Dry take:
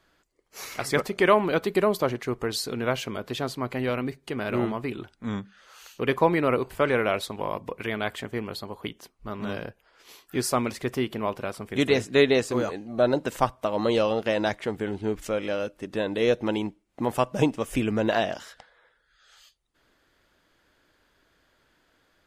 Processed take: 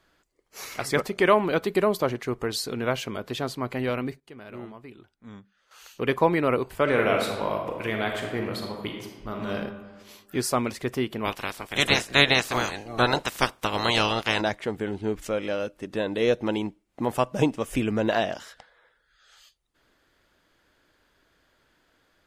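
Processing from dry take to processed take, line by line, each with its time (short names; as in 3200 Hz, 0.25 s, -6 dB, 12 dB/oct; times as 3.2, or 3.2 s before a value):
3.82–6.09 dip -13.5 dB, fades 0.38 s logarithmic
6.83–9.54 reverb throw, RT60 1.3 s, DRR 1.5 dB
11.24–14.4 spectral limiter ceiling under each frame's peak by 23 dB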